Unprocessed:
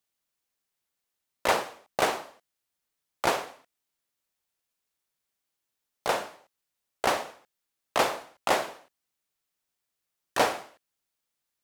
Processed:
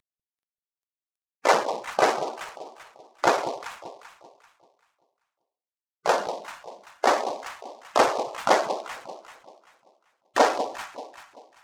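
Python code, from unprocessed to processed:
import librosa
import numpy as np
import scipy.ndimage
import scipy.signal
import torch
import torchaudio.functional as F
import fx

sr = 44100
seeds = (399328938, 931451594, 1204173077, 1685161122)

y = fx.cvsd(x, sr, bps=64000)
y = fx.echo_alternate(y, sr, ms=194, hz=1000.0, feedback_pct=56, wet_db=-9)
y = fx.spec_gate(y, sr, threshold_db=-15, keep='strong')
y = fx.noise_mod_delay(y, sr, seeds[0], noise_hz=3900.0, depth_ms=0.033)
y = y * librosa.db_to_amplitude(6.0)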